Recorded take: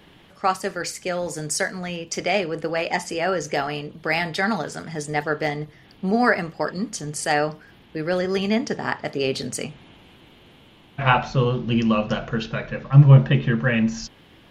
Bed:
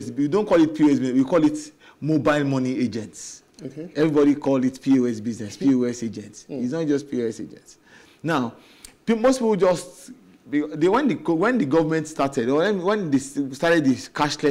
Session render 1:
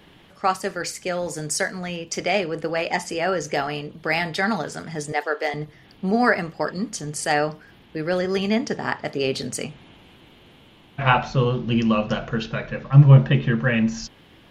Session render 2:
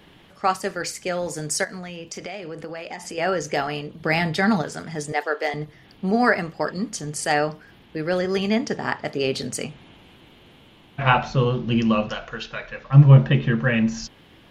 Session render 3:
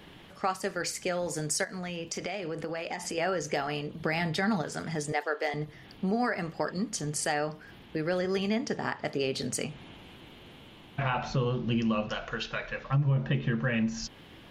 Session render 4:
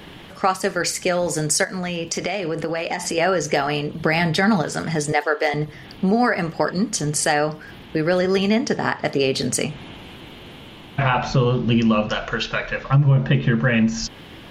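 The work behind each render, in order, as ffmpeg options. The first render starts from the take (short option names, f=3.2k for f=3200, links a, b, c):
-filter_complex "[0:a]asettb=1/sr,asplit=3[a][b][c];[a]atrim=end=5.124[d];[b]atrim=start=5.12:end=5.54,asetpts=PTS-STARTPTS,afade=t=in:d=0.004:c=qsin,afade=t=out:st=0.416:d=0.004:c=qsin,highpass=f=370:w=0.5412,highpass=f=370:w=1.3066[e];[c]atrim=start=5.536[f];[d][e]acrossfade=d=0.004:c1=hsin:c2=qsin[g];[g][f]acrossfade=d=0.004:c1=qsin:c2=hsin"
-filter_complex "[0:a]asettb=1/sr,asplit=3[a][b][c];[a]atrim=end=1.644[d];[b]atrim=start=1.64:end=3.18,asetpts=PTS-STARTPTS,afade=t=in:d=0.004:c=qsin,afade=t=out:st=1.536:d=0.004:c=qsin,acompressor=threshold=-30dB:ratio=6:attack=3.2:release=140:knee=1:detection=peak[e];[c]atrim=start=3.176[f];[d][e]acrossfade=d=0.004:c1=hsin:c2=qsin[g];[g][f]acrossfade=d=0.004:c1=qsin:c2=hsin,asettb=1/sr,asplit=3[h][i][j];[h]atrim=end=4.004[k];[i]atrim=start=4:end=4.62,asetpts=PTS-STARTPTS,afade=t=in:d=0.004:c=qsin,afade=t=out:st=0.616:d=0.004:c=qsin,equalizer=f=130:w=0.5:g=7.5[l];[j]atrim=start=4.616[m];[k][l]acrossfade=d=0.004:c1=hsin:c2=qsin[n];[n][m]acrossfade=d=0.004:c1=qsin:c2=hsin,asettb=1/sr,asplit=3[o][p][q];[o]atrim=end=12.094[r];[p]atrim=start=12.09:end=12.9,asetpts=PTS-STARTPTS,afade=t=in:d=0.004:c=qsin,afade=t=out:st=0.806:d=0.004:c=qsin,equalizer=f=160:t=o:w=2.9:g=-15[s];[q]atrim=start=12.896[t];[r][s]acrossfade=d=0.004:c1=hsin:c2=qsin[u];[u][t]acrossfade=d=0.004:c1=qsin:c2=hsin"
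-af "alimiter=limit=-10dB:level=0:latency=1:release=138,acompressor=threshold=-31dB:ratio=2"
-af "volume=10.5dB"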